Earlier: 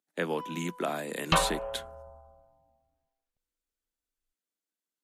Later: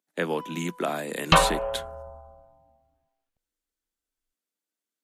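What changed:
speech +3.5 dB; second sound +7.0 dB

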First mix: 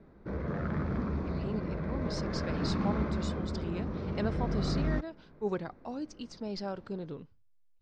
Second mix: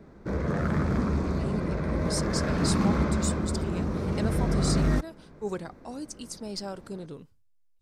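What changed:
background +6.5 dB; master: remove Bessel low-pass 3400 Hz, order 6

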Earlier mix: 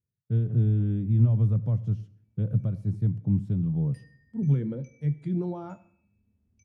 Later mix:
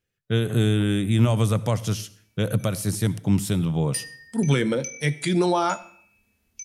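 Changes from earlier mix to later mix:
background -6.5 dB; master: remove band-pass 120 Hz, Q 1.4

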